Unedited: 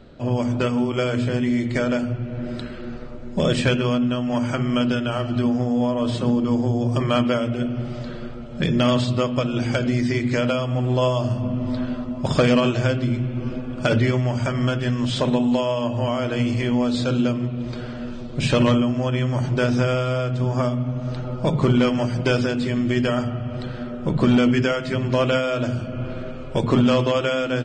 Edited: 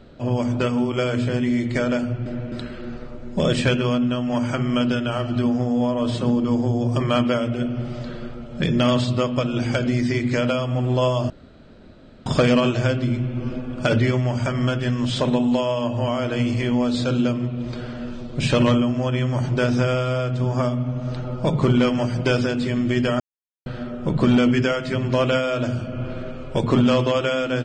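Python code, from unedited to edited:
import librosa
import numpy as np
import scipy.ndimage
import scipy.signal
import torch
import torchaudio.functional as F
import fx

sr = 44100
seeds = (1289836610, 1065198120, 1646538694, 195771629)

y = fx.edit(x, sr, fx.reverse_span(start_s=2.26, length_s=0.26),
    fx.room_tone_fill(start_s=11.3, length_s=0.96),
    fx.silence(start_s=23.2, length_s=0.46), tone=tone)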